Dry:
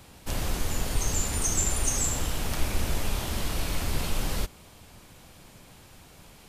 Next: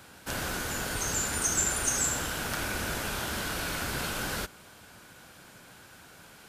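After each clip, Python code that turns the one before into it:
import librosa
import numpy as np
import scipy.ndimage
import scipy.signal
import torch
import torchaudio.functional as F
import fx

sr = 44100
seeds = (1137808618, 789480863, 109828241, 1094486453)

y = fx.highpass(x, sr, hz=180.0, slope=6)
y = fx.peak_eq(y, sr, hz=1500.0, db=12.0, octaves=0.29)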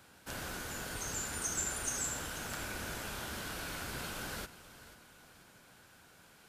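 y = fx.echo_feedback(x, sr, ms=488, feedback_pct=40, wet_db=-15.5)
y = y * librosa.db_to_amplitude(-8.5)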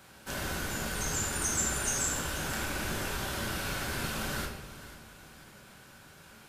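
y = fx.room_shoebox(x, sr, seeds[0], volume_m3=250.0, walls='mixed', distance_m=1.1)
y = y * librosa.db_to_amplitude(3.5)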